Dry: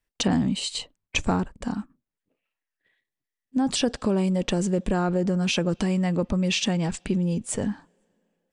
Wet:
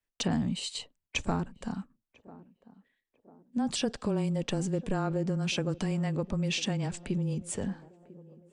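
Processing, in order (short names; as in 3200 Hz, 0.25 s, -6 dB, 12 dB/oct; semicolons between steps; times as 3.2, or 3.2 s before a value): frequency shift -15 Hz; on a send: narrowing echo 0.996 s, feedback 58%, band-pass 430 Hz, level -17.5 dB; on the sum: gain -6.5 dB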